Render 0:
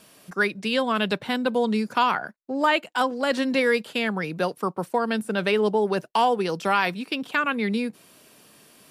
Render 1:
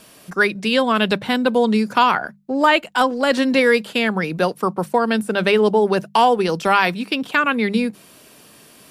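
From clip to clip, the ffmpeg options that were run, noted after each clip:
-af "lowshelf=f=70:g=8.5,bandreject=f=50:t=h:w=6,bandreject=f=100:t=h:w=6,bandreject=f=150:t=h:w=6,bandreject=f=200:t=h:w=6,volume=2"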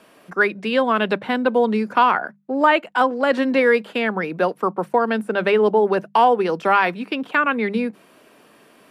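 -filter_complex "[0:a]acrossover=split=210 2600:gain=0.224 1 0.2[s0][s1][s2];[s0][s1][s2]amix=inputs=3:normalize=0"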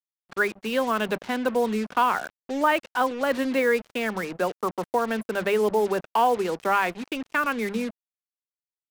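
-af "acrusher=bits=4:mix=0:aa=0.5,volume=0.501"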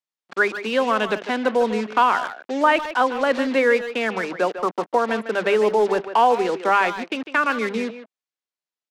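-filter_complex "[0:a]highpass=230,lowpass=6400,asplit=2[s0][s1];[s1]adelay=150,highpass=300,lowpass=3400,asoftclip=type=hard:threshold=0.1,volume=0.316[s2];[s0][s2]amix=inputs=2:normalize=0,volume=1.68"

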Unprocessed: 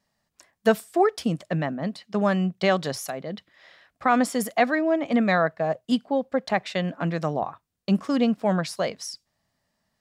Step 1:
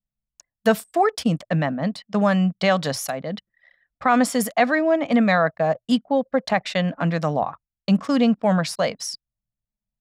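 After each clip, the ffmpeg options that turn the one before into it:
-filter_complex "[0:a]anlmdn=0.0251,equalizer=f=370:t=o:w=0.28:g=-10.5,asplit=2[s0][s1];[s1]alimiter=limit=0.141:level=0:latency=1:release=29,volume=0.794[s2];[s0][s2]amix=inputs=2:normalize=0"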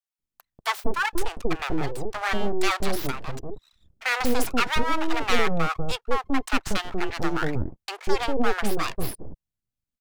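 -filter_complex "[0:a]aeval=exprs='abs(val(0))':c=same,acrossover=split=680[s0][s1];[s0]adelay=190[s2];[s2][s1]amix=inputs=2:normalize=0"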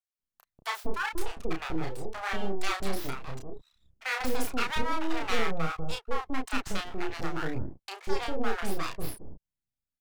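-filter_complex "[0:a]asplit=2[s0][s1];[s1]adelay=31,volume=0.668[s2];[s0][s2]amix=inputs=2:normalize=0,volume=0.398"

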